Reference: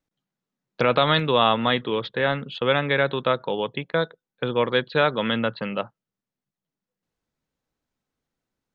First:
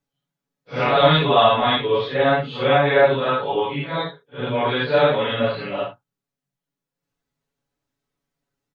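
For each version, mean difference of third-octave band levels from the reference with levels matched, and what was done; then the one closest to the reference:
4.5 dB: random phases in long frames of 200 ms
dynamic equaliser 690 Hz, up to +6 dB, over −34 dBFS, Q 2
comb filter 7.1 ms, depth 76%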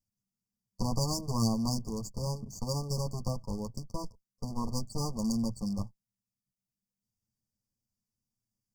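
16.0 dB: lower of the sound and its delayed copy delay 9.3 ms
linear-phase brick-wall band-stop 1,200–4,500 Hz
flat-topped bell 730 Hz −16 dB 2.9 octaves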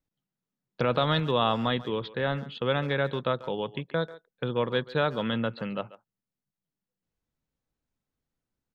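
2.5 dB: low-shelf EQ 160 Hz +9 dB
far-end echo of a speakerphone 140 ms, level −17 dB
dynamic equaliser 2,200 Hz, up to −5 dB, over −40 dBFS, Q 2.9
level −6.5 dB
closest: third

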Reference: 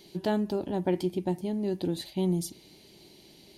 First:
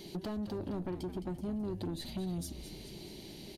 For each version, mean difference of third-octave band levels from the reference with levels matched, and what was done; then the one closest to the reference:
8.0 dB: low-shelf EQ 360 Hz +6.5 dB
downward compressor 6 to 1, threshold −35 dBFS, peak gain reduction 15.5 dB
soft clipping −36 dBFS, distortion −12 dB
echo with shifted repeats 214 ms, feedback 51%, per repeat −110 Hz, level −10.5 dB
level +3.5 dB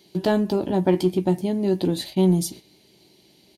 3.0 dB: noise gate −47 dBFS, range −10 dB
high-pass filter 66 Hz
in parallel at −9.5 dB: hard clipping −24 dBFS, distortion −14 dB
on the sum: double-tracking delay 16 ms −11 dB
level +5.5 dB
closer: second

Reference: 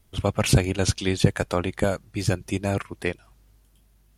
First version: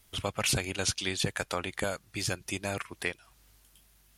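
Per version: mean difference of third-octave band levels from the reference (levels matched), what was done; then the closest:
5.5 dB: tilt shelving filter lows −6.5 dB, about 780 Hz
downward compressor 1.5 to 1, threshold −40 dBFS, peak gain reduction 9 dB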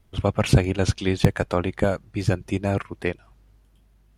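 2.5 dB: high-shelf EQ 4,500 Hz −11.5 dB
in parallel at −8.5 dB: wrap-around overflow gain 3.5 dB
on the sum: level −1 dB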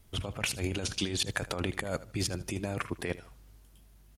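7.0 dB: compressor whose output falls as the input rises −29 dBFS, ratio −1
on a send: repeating echo 77 ms, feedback 28%, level −17 dB
on the sum: level −4.5 dB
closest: second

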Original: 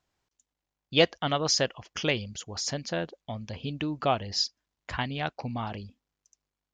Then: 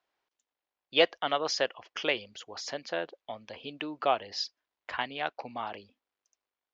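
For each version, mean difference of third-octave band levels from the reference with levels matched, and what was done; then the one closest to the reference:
4.0 dB: three-way crossover with the lows and the highs turned down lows −22 dB, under 330 Hz, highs −17 dB, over 4,500 Hz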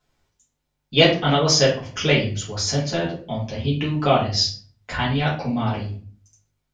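6.5 dB: rectangular room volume 33 cubic metres, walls mixed, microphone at 1.4 metres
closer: first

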